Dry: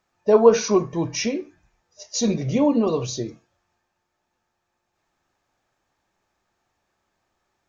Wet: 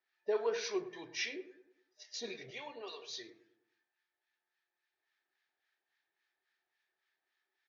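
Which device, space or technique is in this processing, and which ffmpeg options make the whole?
guitar amplifier with harmonic tremolo: -filter_complex "[0:a]asettb=1/sr,asplit=3[link_01][link_02][link_03];[link_01]atrim=end=2.504[link_04];[link_02]atrim=start=2.5:end=3.1,asetpts=PTS-STARTPTS,afade=type=in:duration=0.004:curve=qsin,afade=type=out:start_time=0.596:duration=0.004:curve=qsin,highpass=560[link_05];[link_03]atrim=start=3.096[link_06];[link_04][link_05]acrossfade=duration=0.004:curve1=hsin:curve2=qsin[link_07];[link_07][link_06]acrossfade=duration=0.004:curve1=qsin:curve2=hsin,aderivative,acrossover=split=980[link_08][link_09];[link_08]aeval=exprs='val(0)*(1-0.7/2+0.7/2*cos(2*PI*3.6*n/s))':channel_layout=same[link_10];[link_09]aeval=exprs='val(0)*(1-0.7/2-0.7/2*cos(2*PI*3.6*n/s))':channel_layout=same[link_11];[link_10][link_11]amix=inputs=2:normalize=0,asoftclip=type=tanh:threshold=-24.5dB,highpass=110,equalizer=frequency=210:width_type=q:width=4:gain=-6,equalizer=frequency=390:width_type=q:width=4:gain=9,equalizer=frequency=560:width_type=q:width=4:gain=-5,equalizer=frequency=1100:width_type=q:width=4:gain=-8,equalizer=frequency=1800:width_type=q:width=4:gain=8,equalizer=frequency=2700:width_type=q:width=4:gain=-3,lowpass=frequency=3800:width=0.5412,lowpass=frequency=3800:width=1.3066,asplit=2[link_12][link_13];[link_13]adelay=104,lowpass=frequency=1200:poles=1,volume=-11.5dB,asplit=2[link_14][link_15];[link_15]adelay=104,lowpass=frequency=1200:poles=1,volume=0.48,asplit=2[link_16][link_17];[link_17]adelay=104,lowpass=frequency=1200:poles=1,volume=0.48,asplit=2[link_18][link_19];[link_19]adelay=104,lowpass=frequency=1200:poles=1,volume=0.48,asplit=2[link_20][link_21];[link_21]adelay=104,lowpass=frequency=1200:poles=1,volume=0.48[link_22];[link_12][link_14][link_16][link_18][link_20][link_22]amix=inputs=6:normalize=0,volume=5.5dB"

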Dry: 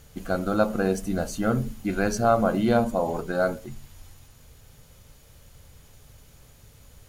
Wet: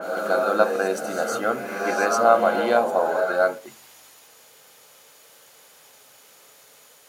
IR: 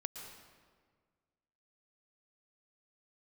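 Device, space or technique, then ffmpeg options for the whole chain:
ghost voice: -filter_complex "[0:a]highpass=frequency=170:poles=1,areverse[link_01];[1:a]atrim=start_sample=2205[link_02];[link_01][link_02]afir=irnorm=-1:irlink=0,areverse,highpass=470,adynamicequalizer=threshold=0.00501:dfrequency=3300:dqfactor=0.7:tfrequency=3300:tqfactor=0.7:attack=5:release=100:ratio=0.375:range=2.5:mode=cutabove:tftype=highshelf,volume=8.5dB"

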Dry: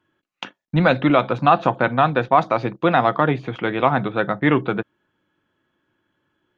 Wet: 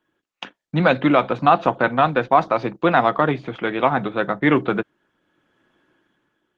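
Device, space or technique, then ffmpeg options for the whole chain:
video call: -af "highpass=150,dynaudnorm=framelen=150:gausssize=9:maxgain=11dB,volume=-1dB" -ar 48000 -c:a libopus -b:a 16k

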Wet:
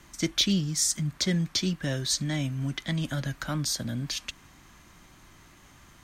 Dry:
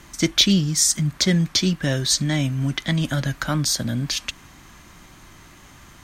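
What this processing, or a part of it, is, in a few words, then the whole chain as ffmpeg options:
one-band saturation: -filter_complex "[0:a]acrossover=split=430|3400[link_01][link_02][link_03];[link_02]asoftclip=type=tanh:threshold=-15.5dB[link_04];[link_01][link_04][link_03]amix=inputs=3:normalize=0,volume=-7.5dB"

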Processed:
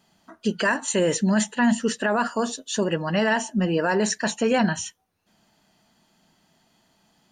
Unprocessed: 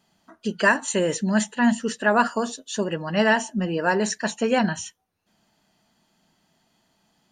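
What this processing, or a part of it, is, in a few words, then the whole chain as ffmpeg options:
stacked limiters: -af "alimiter=limit=-11dB:level=0:latency=1:release=369,alimiter=limit=-15.5dB:level=0:latency=1:release=10,volume=3dB"

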